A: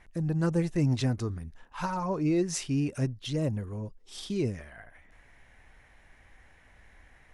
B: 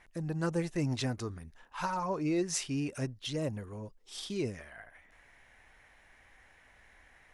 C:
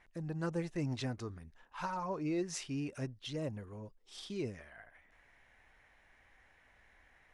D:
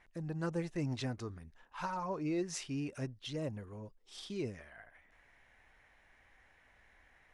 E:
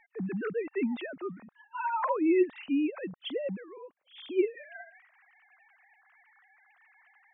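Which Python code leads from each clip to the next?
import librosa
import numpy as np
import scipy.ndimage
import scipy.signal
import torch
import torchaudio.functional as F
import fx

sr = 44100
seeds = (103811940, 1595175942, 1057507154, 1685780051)

y1 = fx.low_shelf(x, sr, hz=310.0, db=-9.0)
y2 = fx.high_shelf(y1, sr, hz=8300.0, db=-10.5)
y2 = y2 * librosa.db_to_amplitude(-4.5)
y3 = y2
y4 = fx.sine_speech(y3, sr)
y4 = y4 * librosa.db_to_amplitude(8.0)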